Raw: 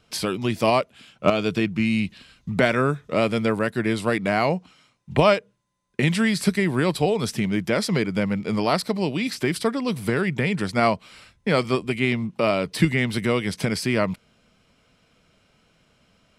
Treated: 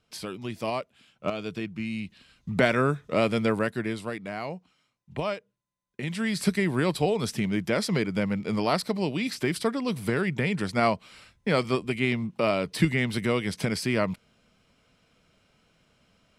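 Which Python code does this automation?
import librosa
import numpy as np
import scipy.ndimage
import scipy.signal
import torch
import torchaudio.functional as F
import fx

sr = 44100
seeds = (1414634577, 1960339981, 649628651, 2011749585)

y = fx.gain(x, sr, db=fx.line((2.05, -10.5), (2.59, -2.5), (3.6, -2.5), (4.22, -13.0), (6.0, -13.0), (6.42, -3.5)))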